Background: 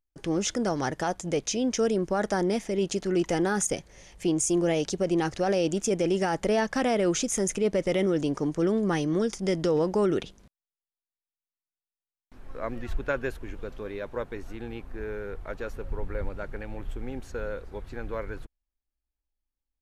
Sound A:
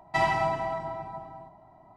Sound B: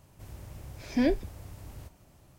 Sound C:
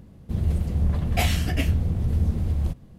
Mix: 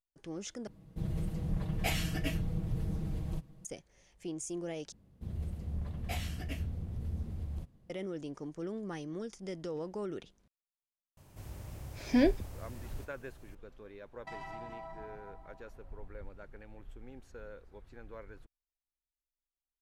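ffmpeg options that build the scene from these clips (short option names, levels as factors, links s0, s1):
-filter_complex "[3:a]asplit=2[s0][s1];[0:a]volume=0.188[s2];[s0]aecho=1:1:6.3:0.68[s3];[1:a]acompressor=threshold=0.0398:ratio=6:attack=3.2:release=140:knee=1:detection=peak[s4];[s2]asplit=3[s5][s6][s7];[s5]atrim=end=0.674[s8];[s3]atrim=end=2.98,asetpts=PTS-STARTPTS,volume=0.335[s9];[s6]atrim=start=3.646:end=4.924[s10];[s1]atrim=end=2.98,asetpts=PTS-STARTPTS,volume=0.178[s11];[s7]atrim=start=7.896[s12];[2:a]atrim=end=2.38,asetpts=PTS-STARTPTS,volume=0.944,afade=t=in:d=0.004:c=hsin,afade=t=out:st=2.376:d=0.004:c=hsin,adelay=11170[s13];[s4]atrim=end=1.96,asetpts=PTS-STARTPTS,volume=0.224,afade=t=in:d=0.004:c=hsin,afade=t=out:st=1.956:d=0.004:c=hsin,adelay=14130[s14];[s8][s9]acrossfade=d=0.004:c1=hsin:c2=hsin[s15];[s15][s10]acrossfade=d=0.004:c1=hsin:c2=hsin[s16];[s16][s11]acrossfade=d=0.004:c1=hsin:c2=hsin[s17];[s17][s12]acrossfade=d=0.004:c1=hsin:c2=hsin[s18];[s18][s13][s14]amix=inputs=3:normalize=0"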